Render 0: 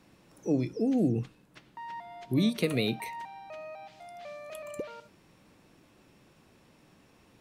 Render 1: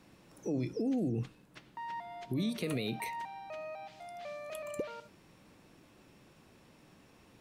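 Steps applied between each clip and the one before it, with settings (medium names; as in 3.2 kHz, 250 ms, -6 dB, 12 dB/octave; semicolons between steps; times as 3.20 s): peak limiter -26 dBFS, peak gain reduction 10 dB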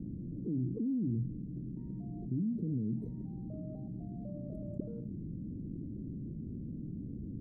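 inverse Chebyshev low-pass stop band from 940 Hz, stop band 60 dB; level flattener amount 70%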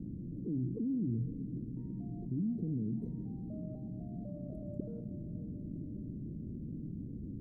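echo that smears into a reverb 489 ms, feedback 47%, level -11.5 dB; trim -1 dB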